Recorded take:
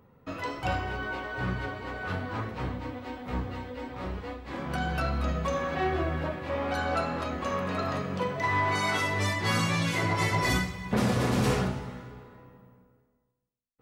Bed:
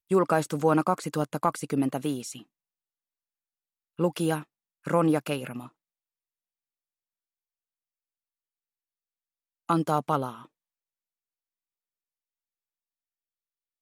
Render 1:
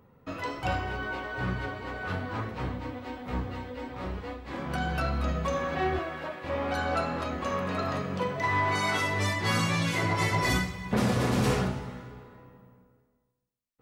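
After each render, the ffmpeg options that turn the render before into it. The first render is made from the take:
-filter_complex "[0:a]asettb=1/sr,asplit=3[s0][s1][s2];[s0]atrim=end=5.994[s3];[s1]atrim=start=5.99:end=6.44,asetpts=PTS-STARTPTS,afade=t=in:d=0.004:c=qsin,afade=t=out:st=0.446:d=0.004:c=qsin,highpass=f=630:p=1[s4];[s2]atrim=start=6.436[s5];[s3][s4]acrossfade=d=0.004:c1=hsin:c2=qsin[s6];[s6][s5]acrossfade=d=0.004:c1=qsin:c2=hsin"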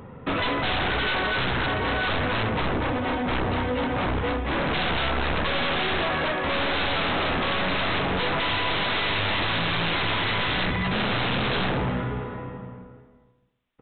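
-af "aeval=exprs='(tanh(22.4*val(0)+0.6)-tanh(0.6))/22.4':c=same,aresample=8000,aeval=exprs='0.0794*sin(PI/2*6.31*val(0)/0.0794)':c=same,aresample=44100"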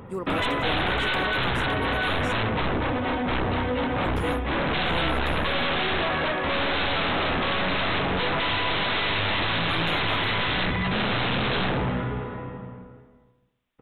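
-filter_complex "[1:a]volume=0.316[s0];[0:a][s0]amix=inputs=2:normalize=0"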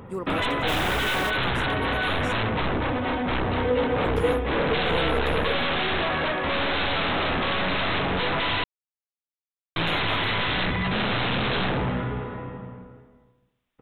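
-filter_complex "[0:a]asplit=3[s0][s1][s2];[s0]afade=t=out:st=0.67:d=0.02[s3];[s1]acrusher=bits=3:mode=log:mix=0:aa=0.000001,afade=t=in:st=0.67:d=0.02,afade=t=out:st=1.29:d=0.02[s4];[s2]afade=t=in:st=1.29:d=0.02[s5];[s3][s4][s5]amix=inputs=3:normalize=0,asettb=1/sr,asplit=3[s6][s7][s8];[s6]atrim=end=3.574[s9];[s7]atrim=start=3.57:end=5.56,asetpts=PTS-STARTPTS,afade=t=in:d=0.004:c=qsin,afade=t=out:st=1.986:d=0.004:c=qsin,equalizer=f=460:w=6.4:g=12[s10];[s8]atrim=start=5.556[s11];[s9][s10]acrossfade=d=0.004:c1=hsin:c2=qsin[s12];[s12][s11]acrossfade=d=0.004:c1=qsin:c2=hsin,asplit=3[s13][s14][s15];[s13]atrim=end=8.64,asetpts=PTS-STARTPTS,afade=t=out:st=8.636:d=0.004:c=hsin[s16];[s14]atrim=start=8.64:end=9.76,asetpts=PTS-STARTPTS,volume=0[s17];[s15]atrim=start=9.76,asetpts=PTS-STARTPTS,afade=t=in:d=0.004:c=hsin[s18];[s16][s17][s18]concat=n=3:v=0:a=1"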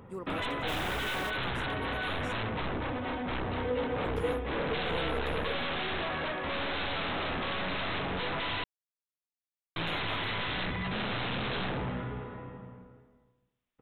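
-af "volume=0.376"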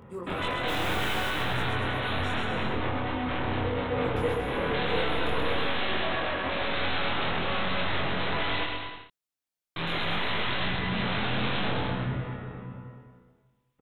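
-filter_complex "[0:a]asplit=2[s0][s1];[s1]adelay=23,volume=0.75[s2];[s0][s2]amix=inputs=2:normalize=0,aecho=1:1:130|234|317.2|383.8|437:0.631|0.398|0.251|0.158|0.1"

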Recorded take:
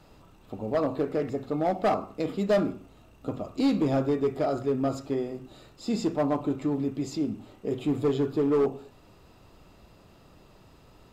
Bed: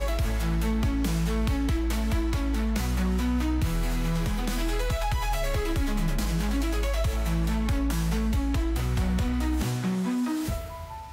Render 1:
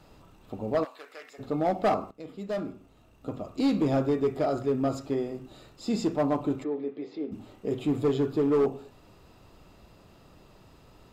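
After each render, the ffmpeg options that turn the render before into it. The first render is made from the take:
-filter_complex "[0:a]asplit=3[s0][s1][s2];[s0]afade=t=out:st=0.83:d=0.02[s3];[s1]highpass=1500,afade=t=in:st=0.83:d=0.02,afade=t=out:st=1.38:d=0.02[s4];[s2]afade=t=in:st=1.38:d=0.02[s5];[s3][s4][s5]amix=inputs=3:normalize=0,asplit=3[s6][s7][s8];[s6]afade=t=out:st=6.63:d=0.02[s9];[s7]highpass=420,equalizer=f=450:t=q:w=4:g=7,equalizer=f=640:t=q:w=4:g=-5,equalizer=f=980:t=q:w=4:g=-7,equalizer=f=1400:t=q:w=4:g=-7,equalizer=f=2800:t=q:w=4:g=-9,lowpass=f=3200:w=0.5412,lowpass=f=3200:w=1.3066,afade=t=in:st=6.63:d=0.02,afade=t=out:st=7.31:d=0.02[s10];[s8]afade=t=in:st=7.31:d=0.02[s11];[s9][s10][s11]amix=inputs=3:normalize=0,asplit=2[s12][s13];[s12]atrim=end=2.11,asetpts=PTS-STARTPTS,afade=t=out:st=2.106:d=0.004:c=hsin:silence=0.177828[s14];[s13]atrim=start=2.11,asetpts=PTS-STARTPTS,afade=t=in:d=1.77:silence=0.177828[s15];[s14][s15]concat=n=2:v=0:a=1"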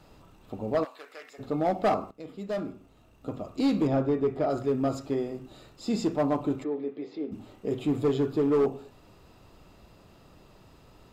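-filter_complex "[0:a]asettb=1/sr,asplit=3[s0][s1][s2];[s0]atrim=end=3.874[s3];[s1]atrim=start=3.87:end=4.5,asetpts=PTS-STARTPTS,afade=t=in:d=0.004:c=qsin,afade=t=out:st=0.626:d=0.004:c=qsin,lowpass=f=2200:p=1[s4];[s2]atrim=start=4.496[s5];[s3][s4]acrossfade=d=0.004:c1=hsin:c2=qsin[s6];[s6][s5]acrossfade=d=0.004:c1=qsin:c2=hsin"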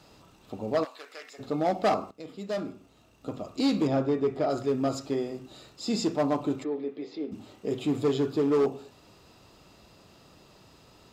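-af "highpass=f=98:p=1,equalizer=f=5400:t=o:w=1.6:g=7"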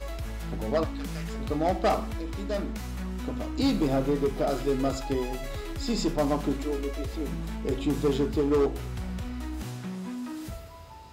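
-filter_complex "[1:a]volume=0.376[s0];[0:a][s0]amix=inputs=2:normalize=0"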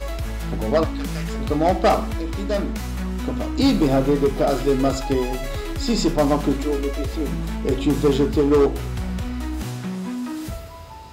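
-af "volume=2.37"

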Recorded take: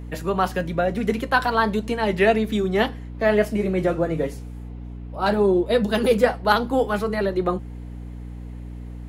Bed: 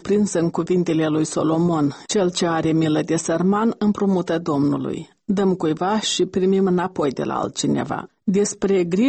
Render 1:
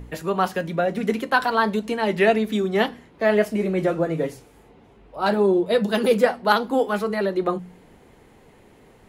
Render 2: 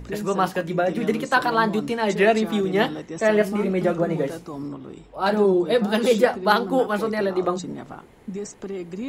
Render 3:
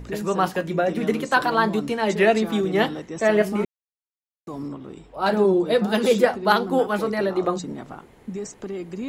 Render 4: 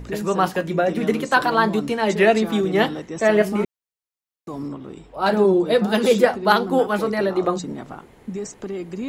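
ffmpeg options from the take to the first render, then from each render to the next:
-af "bandreject=f=60:t=h:w=4,bandreject=f=120:t=h:w=4,bandreject=f=180:t=h:w=4,bandreject=f=240:t=h:w=4,bandreject=f=300:t=h:w=4"
-filter_complex "[1:a]volume=0.211[s0];[0:a][s0]amix=inputs=2:normalize=0"
-filter_complex "[0:a]asplit=3[s0][s1][s2];[s0]atrim=end=3.65,asetpts=PTS-STARTPTS,afade=t=out:st=3.646:d=0.004:c=hsin[s3];[s1]atrim=start=3.65:end=4.47,asetpts=PTS-STARTPTS,volume=0[s4];[s2]atrim=start=4.47,asetpts=PTS-STARTPTS,afade=t=in:d=0.004:c=hsin[s5];[s3][s4][s5]concat=n=3:v=0:a=1"
-af "volume=1.26"

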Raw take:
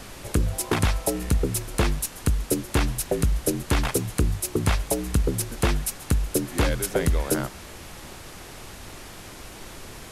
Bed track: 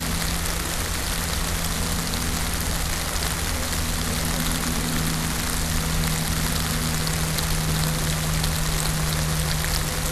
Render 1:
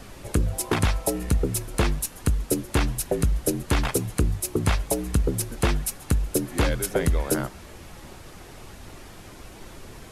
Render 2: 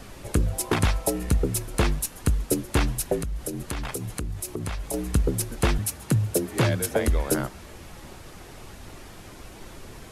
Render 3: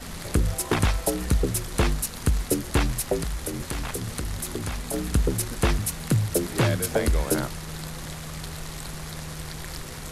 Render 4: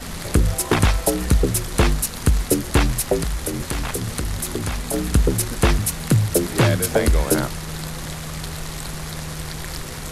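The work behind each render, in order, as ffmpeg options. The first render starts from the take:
-af "afftdn=nr=6:nf=-42"
-filter_complex "[0:a]asettb=1/sr,asplit=3[s0][s1][s2];[s0]atrim=end=3.184[s3];[s1]atrim=start=3.18:end=4.94,asetpts=PTS-STARTPTS,afade=t=in:d=0.004:c=qsin,afade=t=out:st=1.756:d=0.004:c=qsin,acompressor=threshold=0.0447:ratio=6:attack=3.2:release=140:knee=1:detection=peak[s4];[s2]atrim=start=4.936[s5];[s3][s4]acrossfade=d=0.004:c1=hsin:c2=qsin[s6];[s6][s5]acrossfade=d=0.004:c1=qsin:c2=hsin,asettb=1/sr,asplit=3[s7][s8][s9];[s7]atrim=end=5.784[s10];[s8]atrim=start=5.78:end=7.08,asetpts=PTS-STARTPTS,afade=t=in:d=0.004:c=qsin,afade=t=out:st=1.296:d=0.004:c=qsin,afreqshift=57[s11];[s9]atrim=start=7.076[s12];[s10][s11]acrossfade=d=0.004:c1=hsin:c2=qsin[s13];[s13][s12]acrossfade=d=0.004:c1=qsin:c2=hsin"
-filter_complex "[1:a]volume=0.224[s0];[0:a][s0]amix=inputs=2:normalize=0"
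-af "volume=1.88"

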